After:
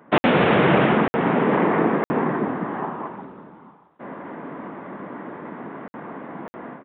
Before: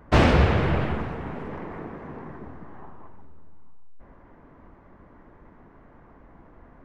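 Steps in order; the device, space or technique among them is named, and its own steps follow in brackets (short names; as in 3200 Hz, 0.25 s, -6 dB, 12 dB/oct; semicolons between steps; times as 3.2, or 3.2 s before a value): call with lost packets (HPF 170 Hz 24 dB/oct; downsampling 8000 Hz; AGC gain up to 16 dB; packet loss packets of 60 ms random); gain +2.5 dB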